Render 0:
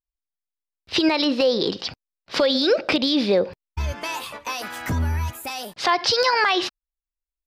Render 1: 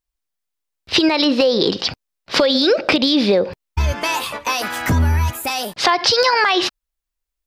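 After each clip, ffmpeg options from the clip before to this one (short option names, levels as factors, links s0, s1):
-af "acompressor=threshold=0.1:ratio=6,volume=2.66"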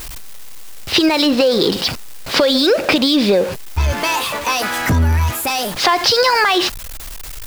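-af "aeval=exprs='val(0)+0.5*0.0794*sgn(val(0))':c=same"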